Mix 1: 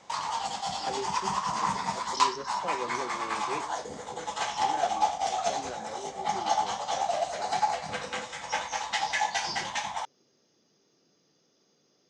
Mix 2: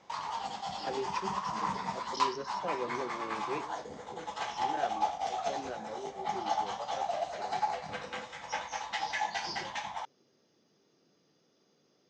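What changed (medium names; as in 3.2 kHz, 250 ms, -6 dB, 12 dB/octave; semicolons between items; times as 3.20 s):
background -4.5 dB; master: add distance through air 100 m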